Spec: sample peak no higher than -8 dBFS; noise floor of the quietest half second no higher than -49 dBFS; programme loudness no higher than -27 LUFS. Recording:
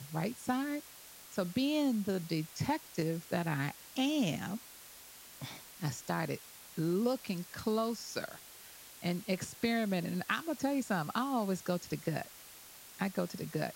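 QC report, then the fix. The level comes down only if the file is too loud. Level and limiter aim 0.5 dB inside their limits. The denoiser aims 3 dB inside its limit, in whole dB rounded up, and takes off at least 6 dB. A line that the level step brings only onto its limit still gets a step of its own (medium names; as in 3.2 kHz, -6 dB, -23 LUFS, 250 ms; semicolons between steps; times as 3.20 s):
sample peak -17.0 dBFS: pass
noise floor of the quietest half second -53 dBFS: pass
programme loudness -35.5 LUFS: pass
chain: none needed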